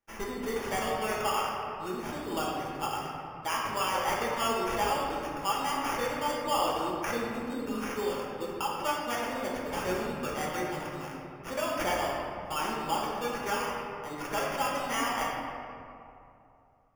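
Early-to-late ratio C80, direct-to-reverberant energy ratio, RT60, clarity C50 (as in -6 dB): 1.0 dB, -4.5 dB, 2.7 s, -1.0 dB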